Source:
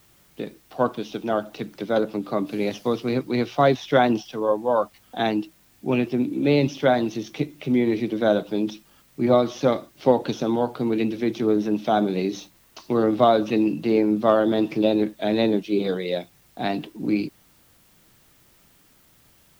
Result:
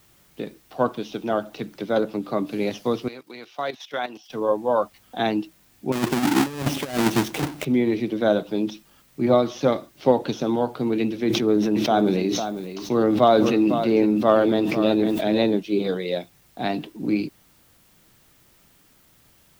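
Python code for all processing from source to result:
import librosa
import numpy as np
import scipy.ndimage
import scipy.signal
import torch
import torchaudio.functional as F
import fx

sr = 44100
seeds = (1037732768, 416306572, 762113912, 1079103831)

y = fx.chain(x, sr, fx.highpass(hz=1100.0, slope=6),
    fx.level_steps(step_db=13), at=(3.08, 4.3))
y = fx.chain(y, sr, fx.halfwave_hold(),
    fx.highpass(hz=40.0, slope=12),
    fx.over_compress(threshold_db=-21.0, ratio=-0.5), at=(5.92, 7.65))
y = fx.chain(y, sr, fx.echo_single(ms=503, db=-11.0),
    fx.sustainer(db_per_s=29.0), at=(11.25, 15.44))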